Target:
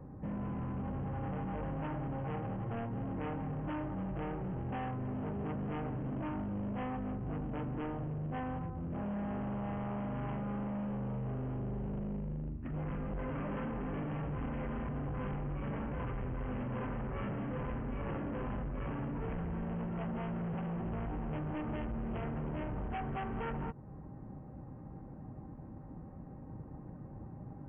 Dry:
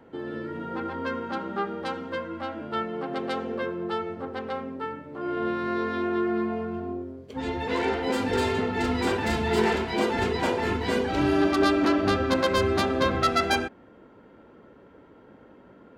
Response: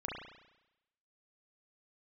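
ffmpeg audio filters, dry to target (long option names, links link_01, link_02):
-af "bass=frequency=250:gain=9,treble=frequency=4000:gain=-13,alimiter=limit=-19dB:level=0:latency=1:release=301,acompressor=threshold=-32dB:ratio=3,aresample=11025,asoftclip=type=hard:threshold=-36.5dB,aresample=44100,asetrate=25442,aresample=44100,volume=1dB"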